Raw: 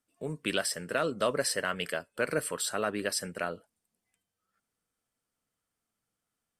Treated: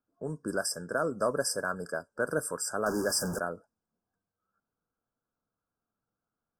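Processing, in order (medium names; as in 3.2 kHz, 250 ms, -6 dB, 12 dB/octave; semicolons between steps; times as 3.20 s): 2.86–3.39 s: jump at every zero crossing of -30 dBFS; brick-wall FIR band-stop 1.7–4.7 kHz; level-controlled noise filter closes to 2.2 kHz, open at -29 dBFS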